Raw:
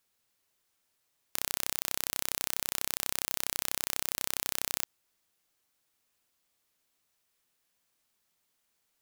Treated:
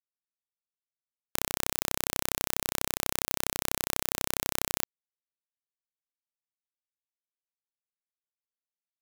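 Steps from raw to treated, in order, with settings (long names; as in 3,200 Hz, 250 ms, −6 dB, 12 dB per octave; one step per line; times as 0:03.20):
tilt shelving filter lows +5 dB, about 1,100 Hz
log-companded quantiser 4 bits
level +5 dB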